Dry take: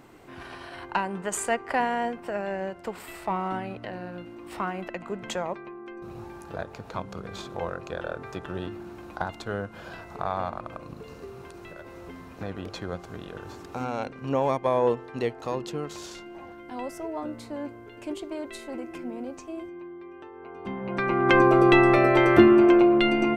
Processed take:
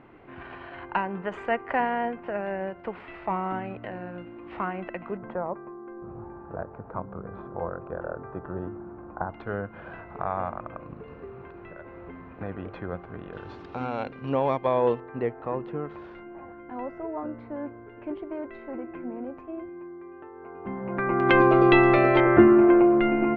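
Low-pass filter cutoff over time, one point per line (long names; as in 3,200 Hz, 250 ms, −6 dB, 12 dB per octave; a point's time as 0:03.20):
low-pass filter 24 dB per octave
2,700 Hz
from 0:05.17 1,400 Hz
from 0:09.34 2,300 Hz
from 0:13.33 3,900 Hz
from 0:15.00 2,000 Hz
from 0:21.20 4,000 Hz
from 0:22.20 2,000 Hz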